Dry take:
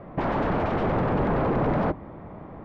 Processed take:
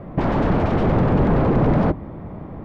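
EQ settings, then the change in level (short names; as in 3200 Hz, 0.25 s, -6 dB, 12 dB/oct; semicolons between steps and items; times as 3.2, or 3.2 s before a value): low shelf 420 Hz +10 dB; high shelf 4200 Hz +11 dB; 0.0 dB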